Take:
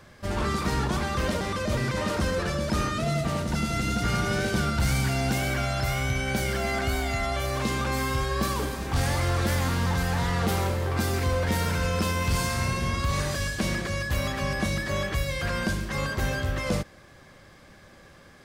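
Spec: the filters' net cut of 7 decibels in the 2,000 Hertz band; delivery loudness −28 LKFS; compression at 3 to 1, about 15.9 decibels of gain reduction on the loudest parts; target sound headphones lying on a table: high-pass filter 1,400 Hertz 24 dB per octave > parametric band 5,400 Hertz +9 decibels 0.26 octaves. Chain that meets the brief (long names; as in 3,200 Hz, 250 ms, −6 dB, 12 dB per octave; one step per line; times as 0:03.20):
parametric band 2,000 Hz −8 dB
downward compressor 3 to 1, threshold −45 dBFS
high-pass filter 1,400 Hz 24 dB per octave
parametric band 5,400 Hz +9 dB 0.26 octaves
level +20.5 dB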